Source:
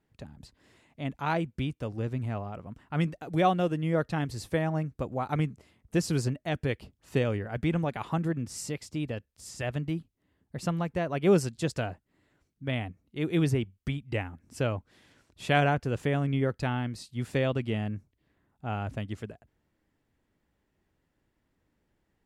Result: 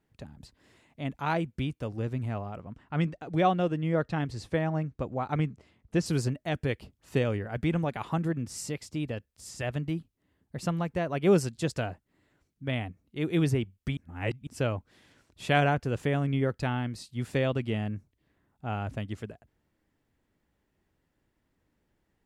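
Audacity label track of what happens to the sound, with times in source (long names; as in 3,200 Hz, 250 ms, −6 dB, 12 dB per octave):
2.610000	6.060000	high-frequency loss of the air 65 metres
13.970000	14.470000	reverse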